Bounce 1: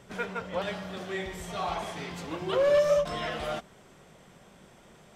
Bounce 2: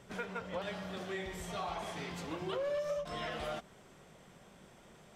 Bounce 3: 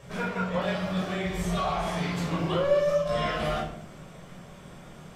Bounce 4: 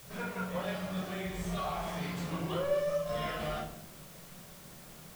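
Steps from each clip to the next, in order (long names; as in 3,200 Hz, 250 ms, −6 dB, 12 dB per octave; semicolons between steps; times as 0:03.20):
downward compressor 4 to 1, threshold −32 dBFS, peak gain reduction 10.5 dB; level −3.5 dB
rectangular room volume 980 cubic metres, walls furnished, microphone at 5.7 metres; level +3 dB
background noise white −47 dBFS; level −7.5 dB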